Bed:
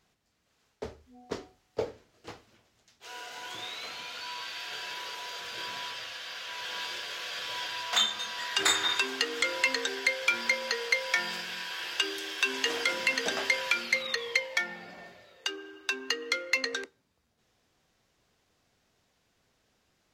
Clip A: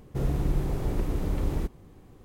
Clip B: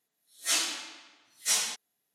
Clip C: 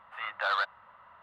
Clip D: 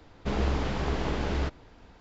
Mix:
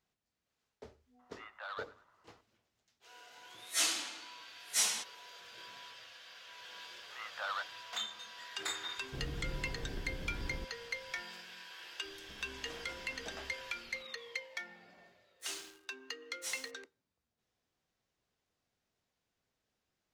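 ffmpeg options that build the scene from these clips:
-filter_complex "[3:a]asplit=2[s0][s1];[2:a]asplit=2[s2][s3];[0:a]volume=0.211[s4];[s0]asplit=2[s5][s6];[s6]adelay=101,lowpass=f=4200:p=1,volume=0.133,asplit=2[s7][s8];[s8]adelay=101,lowpass=f=4200:p=1,volume=0.48,asplit=2[s9][s10];[s10]adelay=101,lowpass=f=4200:p=1,volume=0.48,asplit=2[s11][s12];[s12]adelay=101,lowpass=f=4200:p=1,volume=0.48[s13];[s5][s7][s9][s11][s13]amix=inputs=5:normalize=0[s14];[4:a]acompressor=threshold=0.00794:ratio=6:attack=3.2:release=140:knee=1:detection=peak[s15];[s3]aeval=exprs='sgn(val(0))*max(abs(val(0))-0.0112,0)':c=same[s16];[s14]atrim=end=1.22,asetpts=PTS-STARTPTS,volume=0.168,afade=t=in:d=0.004:c=hsin,afade=t=out:st=1.216:d=0.004:c=hsin,adelay=1190[s17];[s2]atrim=end=2.14,asetpts=PTS-STARTPTS,volume=0.631,afade=t=in:d=0.004:c=hsin,afade=t=out:st=2.136:d=0.004:c=hsin,adelay=3280[s18];[s1]atrim=end=1.22,asetpts=PTS-STARTPTS,volume=0.316,afade=t=in:d=0.004:c=hsin,afade=t=out:st=1.216:d=0.004:c=hsin,adelay=307818S[s19];[1:a]atrim=end=2.24,asetpts=PTS-STARTPTS,volume=0.188,afade=t=in:d=0.004:c=hsin,afade=t=out:st=2.236:d=0.004:c=hsin,adelay=396018S[s20];[s15]atrim=end=2,asetpts=PTS-STARTPTS,volume=0.251,afade=t=in:d=0.004:c=hsin,afade=t=out:st=1.996:d=0.004:c=hsin,adelay=12040[s21];[s16]atrim=end=2.14,asetpts=PTS-STARTPTS,volume=0.2,afade=t=in:d=0.004:c=hsin,afade=t=out:st=2.136:d=0.004:c=hsin,adelay=14960[s22];[s4][s17][s18][s19][s20][s21][s22]amix=inputs=7:normalize=0"

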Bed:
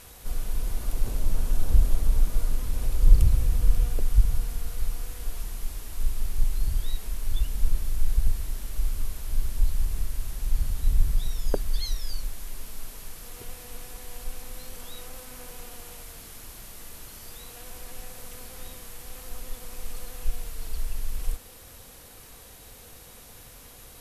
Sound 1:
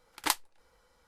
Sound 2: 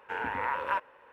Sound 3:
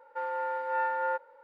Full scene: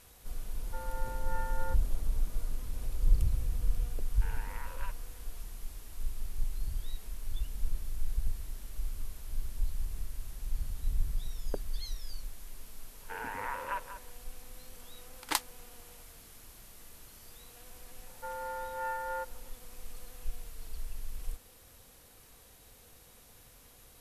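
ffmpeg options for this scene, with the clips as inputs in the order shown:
-filter_complex "[3:a]asplit=2[s0][s1];[2:a]asplit=2[s2][s3];[0:a]volume=0.335[s4];[s2]acrossover=split=190|2200[s5][s6][s7];[s6]acompressor=threshold=0.0112:ratio=2.5:attack=4.5:release=149:knee=2.83:detection=peak[s8];[s5][s8][s7]amix=inputs=3:normalize=0[s9];[s3]aecho=1:1:191:0.282[s10];[s0]atrim=end=1.43,asetpts=PTS-STARTPTS,volume=0.282,afade=t=in:d=0.004:c=hsin,afade=t=out:st=1.426:d=0.004:c=hsin,adelay=570[s11];[s9]atrim=end=1.12,asetpts=PTS-STARTPTS,volume=0.335,afade=t=in:d=0.004:c=hsin,afade=t=out:st=1.116:d=0.004:c=hsin,adelay=4120[s12];[s10]atrim=end=1.12,asetpts=PTS-STARTPTS,volume=0.473,afade=t=in:d=0.004:c=hsin,afade=t=out:st=1.116:d=0.004:c=hsin,adelay=573300S[s13];[1:a]atrim=end=1.07,asetpts=PTS-STARTPTS,volume=0.75,afade=t=in:d=0.004:c=hsin,afade=t=out:st=1.066:d=0.004:c=hsin,adelay=15050[s14];[s1]atrim=end=1.43,asetpts=PTS-STARTPTS,volume=0.473,afade=t=in:d=0.004:c=hsin,afade=t=out:st=1.426:d=0.004:c=hsin,adelay=18070[s15];[s4][s11][s12][s13][s14][s15]amix=inputs=6:normalize=0"

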